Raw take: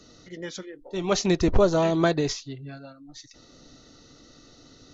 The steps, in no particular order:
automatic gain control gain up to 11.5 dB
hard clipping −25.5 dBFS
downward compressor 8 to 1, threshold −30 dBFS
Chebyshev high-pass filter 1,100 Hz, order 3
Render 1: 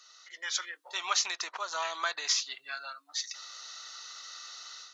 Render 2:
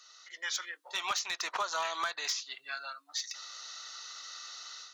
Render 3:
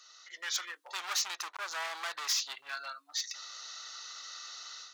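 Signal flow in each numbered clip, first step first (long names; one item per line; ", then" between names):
downward compressor, then Chebyshev high-pass filter, then hard clipping, then automatic gain control
Chebyshev high-pass filter, then automatic gain control, then downward compressor, then hard clipping
downward compressor, then automatic gain control, then hard clipping, then Chebyshev high-pass filter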